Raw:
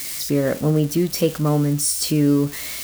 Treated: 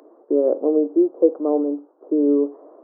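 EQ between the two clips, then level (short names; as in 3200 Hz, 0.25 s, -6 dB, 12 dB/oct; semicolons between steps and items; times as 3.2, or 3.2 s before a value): Gaussian blur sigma 13 samples; steep high-pass 320 Hz 48 dB/oct; +8.0 dB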